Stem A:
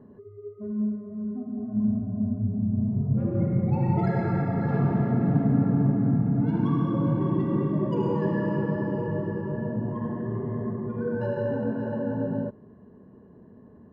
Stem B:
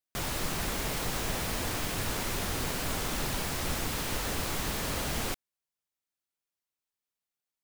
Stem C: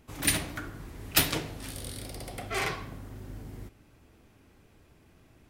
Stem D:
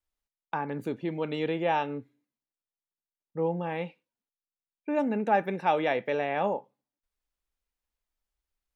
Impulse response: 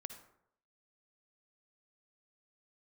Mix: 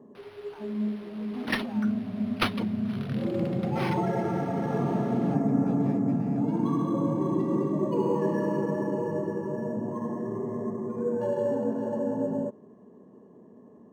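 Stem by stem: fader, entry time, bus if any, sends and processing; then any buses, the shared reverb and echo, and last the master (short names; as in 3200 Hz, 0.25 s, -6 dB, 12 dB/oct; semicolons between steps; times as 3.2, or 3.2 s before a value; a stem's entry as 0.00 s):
+2.0 dB, 0.00 s, no send, notch 1500 Hz, Q 5.3
-16.5 dB, 0.00 s, no send, dry
-0.5 dB, 1.25 s, no send, reverb removal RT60 1.2 s
-19.5 dB, 0.00 s, no send, dry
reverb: off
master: HPF 240 Hz 12 dB/oct; bell 1900 Hz -3 dB; decimation joined by straight lines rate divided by 6×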